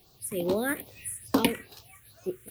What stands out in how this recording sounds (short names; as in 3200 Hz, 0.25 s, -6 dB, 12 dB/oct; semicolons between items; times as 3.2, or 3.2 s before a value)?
a quantiser's noise floor 10-bit, dither triangular; random-step tremolo 3.5 Hz; phasing stages 4, 2.4 Hz, lowest notch 770–2100 Hz